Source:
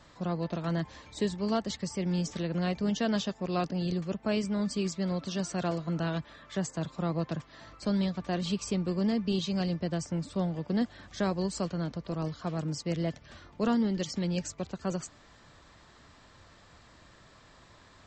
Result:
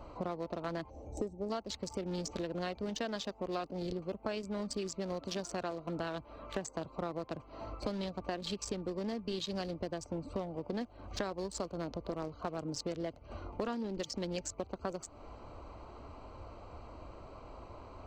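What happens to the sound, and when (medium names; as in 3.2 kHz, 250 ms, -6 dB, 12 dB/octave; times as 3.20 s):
0.90–1.50 s: time-frequency box 880–5100 Hz -19 dB
whole clip: local Wiener filter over 25 samples; peaking EQ 160 Hz -13.5 dB 1.2 oct; compression 8:1, threshold -48 dBFS; trim +13 dB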